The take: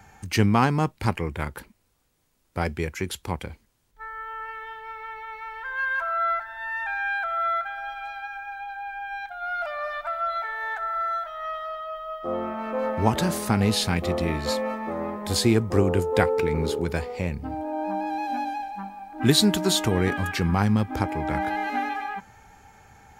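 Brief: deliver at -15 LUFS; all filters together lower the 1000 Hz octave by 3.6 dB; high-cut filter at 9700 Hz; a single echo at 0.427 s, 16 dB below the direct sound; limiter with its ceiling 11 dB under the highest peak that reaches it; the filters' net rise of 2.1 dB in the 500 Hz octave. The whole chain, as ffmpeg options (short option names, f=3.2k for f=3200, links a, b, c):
-af "lowpass=9.7k,equalizer=f=500:t=o:g=4,equalizer=f=1k:t=o:g=-6.5,alimiter=limit=-15.5dB:level=0:latency=1,aecho=1:1:427:0.158,volume=13.5dB"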